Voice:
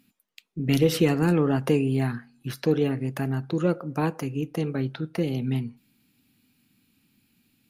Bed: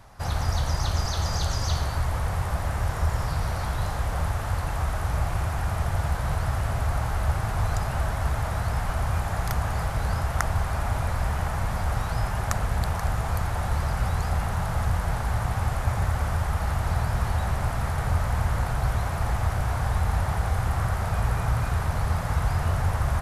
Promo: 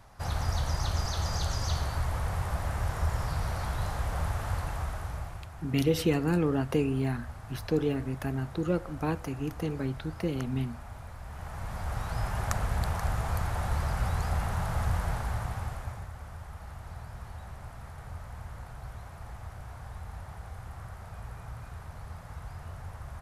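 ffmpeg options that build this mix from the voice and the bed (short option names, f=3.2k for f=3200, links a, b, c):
-filter_complex "[0:a]adelay=5050,volume=-5dB[a];[1:a]volume=9dB,afade=t=out:st=4.53:d=0.93:silence=0.223872,afade=t=in:st=11.25:d=1.17:silence=0.211349,afade=t=out:st=15.01:d=1.07:silence=0.211349[b];[a][b]amix=inputs=2:normalize=0"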